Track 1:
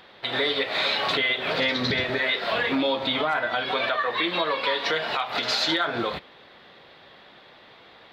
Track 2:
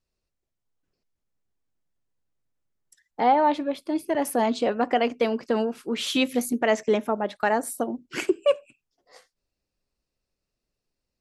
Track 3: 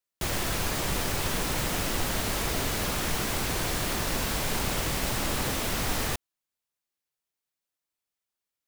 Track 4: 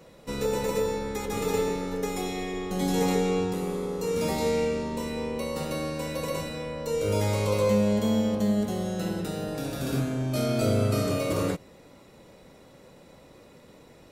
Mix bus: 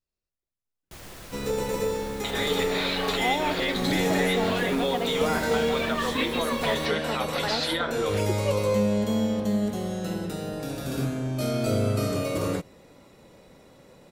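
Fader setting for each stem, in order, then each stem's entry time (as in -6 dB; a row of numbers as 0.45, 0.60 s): -4.5, -8.5, -14.5, -0.5 dB; 2.00, 0.00, 0.70, 1.05 s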